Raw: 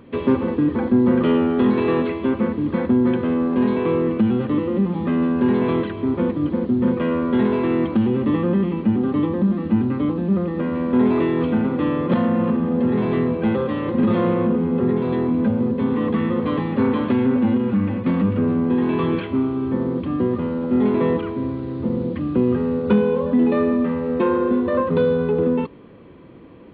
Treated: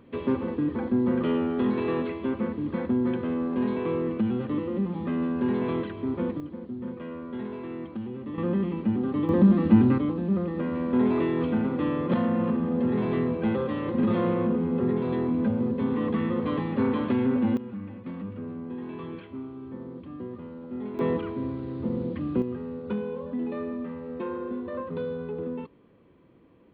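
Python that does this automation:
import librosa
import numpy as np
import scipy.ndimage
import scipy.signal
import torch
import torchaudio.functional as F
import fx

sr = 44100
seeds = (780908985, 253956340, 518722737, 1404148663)

y = fx.gain(x, sr, db=fx.steps((0.0, -8.0), (6.4, -16.5), (8.38, -7.0), (9.29, 1.0), (9.98, -6.0), (17.57, -17.0), (20.99, -6.5), (22.42, -14.0)))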